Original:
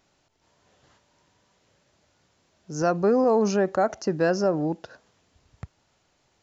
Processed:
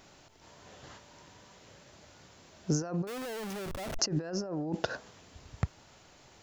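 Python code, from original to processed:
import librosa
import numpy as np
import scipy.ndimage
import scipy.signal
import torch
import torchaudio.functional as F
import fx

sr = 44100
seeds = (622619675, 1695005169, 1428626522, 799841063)

y = fx.schmitt(x, sr, flips_db=-40.0, at=(3.07, 3.99))
y = fx.over_compress(y, sr, threshold_db=-35.0, ratio=-1.0)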